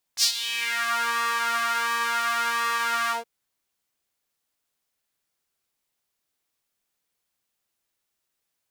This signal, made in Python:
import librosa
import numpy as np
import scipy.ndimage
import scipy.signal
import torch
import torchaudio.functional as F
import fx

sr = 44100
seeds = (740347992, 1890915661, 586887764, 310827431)

y = fx.sub_patch_pwm(sr, seeds[0], note=58, wave2='saw', interval_st=0, detune_cents=16, level2_db=-9.0, sub_db=-27, noise_db=-30.0, kind='highpass', cutoff_hz=490.0, q=3.2, env_oct=3.5, env_decay_s=0.72, env_sustain_pct=40, attack_ms=60.0, decay_s=0.09, sustain_db=-13.5, release_s=0.14, note_s=2.93, lfo_hz=0.7, width_pct=49, width_swing_pct=18)